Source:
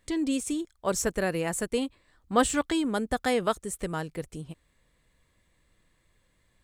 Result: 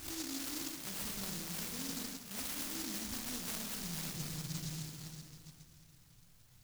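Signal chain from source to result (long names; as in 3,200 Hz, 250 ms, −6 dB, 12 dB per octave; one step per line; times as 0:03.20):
peak hold with a rise ahead of every peak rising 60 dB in 0.36 s
octave-band graphic EQ 125/500/1,000/2,000/4,000/8,000 Hz +11/−12/+10/−11/+10/+7 dB
flutter between parallel walls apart 6.9 metres, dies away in 0.3 s
convolution reverb RT60 2.8 s, pre-delay 5 ms, DRR 2 dB
reversed playback
downward compressor 12 to 1, threshold −35 dBFS, peak gain reduction 21.5 dB
reversed playback
short delay modulated by noise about 5,300 Hz, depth 0.44 ms
level −3 dB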